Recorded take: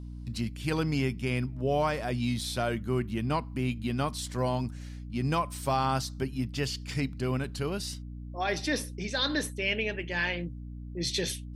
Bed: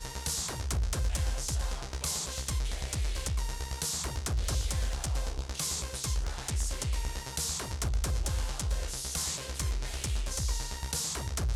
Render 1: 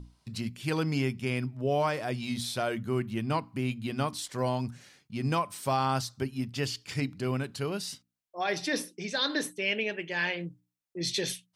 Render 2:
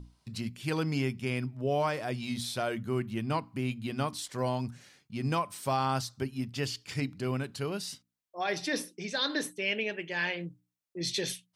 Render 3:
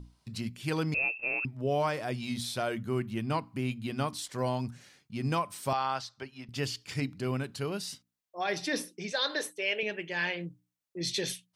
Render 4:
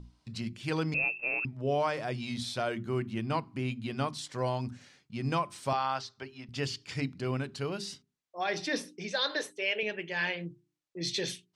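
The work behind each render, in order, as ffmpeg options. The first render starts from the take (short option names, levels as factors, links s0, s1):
-af "bandreject=f=60:t=h:w=6,bandreject=f=120:t=h:w=6,bandreject=f=180:t=h:w=6,bandreject=f=240:t=h:w=6,bandreject=f=300:t=h:w=6"
-af "volume=0.841"
-filter_complex "[0:a]asettb=1/sr,asplit=3[s0][s1][s2];[s0]atrim=end=0.944[s3];[s1]atrim=start=0.94:end=1.45,asetpts=PTS-STARTPTS,afade=t=in:d=0.004:c=qsin,afade=t=out:st=0.506:d=0.004:c=qsin,lowpass=f=2400:t=q:w=0.5098,lowpass=f=2400:t=q:w=0.6013,lowpass=f=2400:t=q:w=0.9,lowpass=f=2400:t=q:w=2.563,afreqshift=-2800[s4];[s2]atrim=start=1.446[s5];[s3][s4]acrossfade=d=0.004:c1=hsin:c2=qsin[s6];[s6][s5]acrossfade=d=0.004:c1=qsin:c2=hsin,asettb=1/sr,asplit=3[s7][s8][s9];[s7]atrim=end=5.734[s10];[s8]atrim=start=5.73:end=6.49,asetpts=PTS-STARTPTS,afade=t=in:d=0.004:c=qsin,afade=t=out:st=0.756:d=0.004:c=qsin,acrossover=split=510 5700:gain=0.2 1 0.112[s11][s12][s13];[s11][s12][s13]amix=inputs=3:normalize=0[s14];[s9]atrim=start=6.486[s15];[s10][s14]acrossfade=d=0.004:c1=hsin:c2=qsin[s16];[s16][s15]acrossfade=d=0.004:c1=qsin:c2=hsin,asettb=1/sr,asplit=3[s17][s18][s19];[s17]atrim=end=9.124[s20];[s18]atrim=start=9.12:end=9.83,asetpts=PTS-STARTPTS,afade=t=in:d=0.004:c=qsin,afade=t=out:st=0.706:d=0.004:c=qsin,lowshelf=f=330:t=q:w=1.5:g=-11[s21];[s19]atrim=start=9.826[s22];[s20][s21]acrossfade=d=0.004:c1=hsin:c2=qsin[s23];[s23][s22]acrossfade=d=0.004:c1=qsin:c2=hsin"
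-af "lowpass=7200,bandreject=f=50:t=h:w=6,bandreject=f=100:t=h:w=6,bandreject=f=150:t=h:w=6,bandreject=f=200:t=h:w=6,bandreject=f=250:t=h:w=6,bandreject=f=300:t=h:w=6,bandreject=f=350:t=h:w=6,bandreject=f=400:t=h:w=6"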